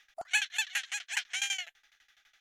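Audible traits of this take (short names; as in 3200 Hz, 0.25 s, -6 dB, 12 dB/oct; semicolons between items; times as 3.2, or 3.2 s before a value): tremolo saw down 12 Hz, depth 95%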